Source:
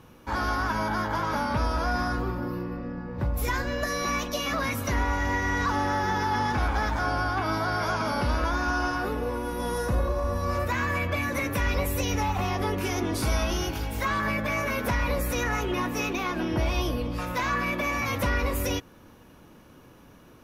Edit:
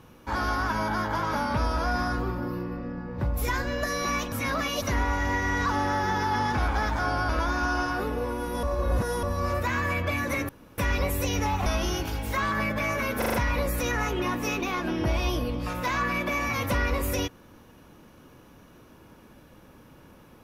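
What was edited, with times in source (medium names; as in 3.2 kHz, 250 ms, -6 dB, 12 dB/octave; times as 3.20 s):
4.32–4.82 s: reverse
7.29–8.34 s: delete
9.68–10.28 s: reverse
11.54 s: insert room tone 0.29 s
12.42–13.34 s: delete
14.86 s: stutter 0.04 s, 5 plays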